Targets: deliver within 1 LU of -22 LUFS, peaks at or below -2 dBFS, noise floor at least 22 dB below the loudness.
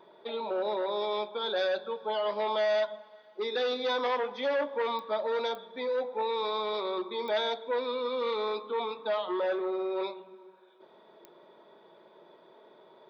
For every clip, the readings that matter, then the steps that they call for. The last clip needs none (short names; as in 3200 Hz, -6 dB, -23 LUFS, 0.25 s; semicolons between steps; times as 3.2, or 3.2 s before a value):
clicks 4; loudness -31.5 LUFS; peak -20.5 dBFS; loudness target -22.0 LUFS
-> de-click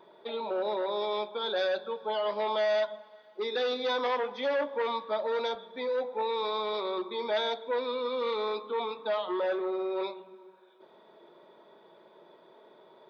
clicks 0; loudness -31.5 LUFS; peak -20.5 dBFS; loudness target -22.0 LUFS
-> gain +9.5 dB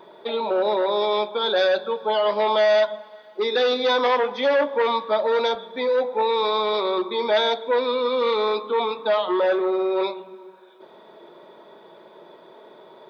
loudness -22.0 LUFS; peak -11.0 dBFS; noise floor -48 dBFS